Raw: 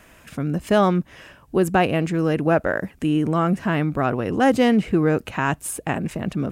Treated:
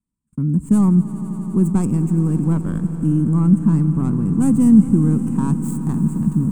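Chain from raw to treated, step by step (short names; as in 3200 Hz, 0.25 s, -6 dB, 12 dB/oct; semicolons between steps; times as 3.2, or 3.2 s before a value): tracing distortion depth 0.27 ms; gate -37 dBFS, range -34 dB; EQ curve 100 Hz 0 dB, 220 Hz +6 dB, 650 Hz -28 dB, 960 Hz -10 dB, 1800 Hz -27 dB, 3500 Hz -29 dB, 5400 Hz -26 dB, 8200 Hz +2 dB, 12000 Hz -13 dB; swelling echo 85 ms, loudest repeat 5, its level -17 dB; gain +4 dB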